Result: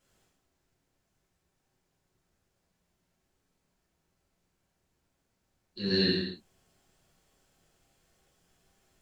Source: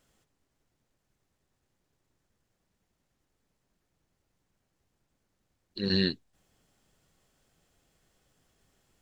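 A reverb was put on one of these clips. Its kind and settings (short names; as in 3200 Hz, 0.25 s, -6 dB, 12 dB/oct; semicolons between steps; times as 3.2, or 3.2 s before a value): non-linear reverb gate 0.29 s falling, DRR -8 dB; gain -7 dB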